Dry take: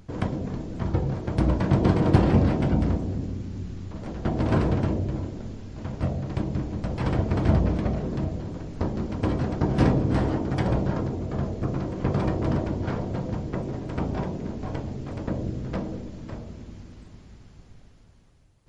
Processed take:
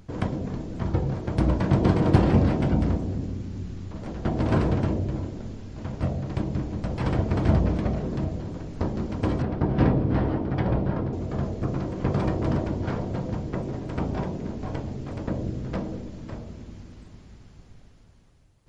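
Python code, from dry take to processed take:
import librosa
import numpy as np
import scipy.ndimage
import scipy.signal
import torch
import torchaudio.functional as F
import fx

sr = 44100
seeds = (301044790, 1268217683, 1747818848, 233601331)

y = fx.air_absorb(x, sr, metres=220.0, at=(9.42, 11.13))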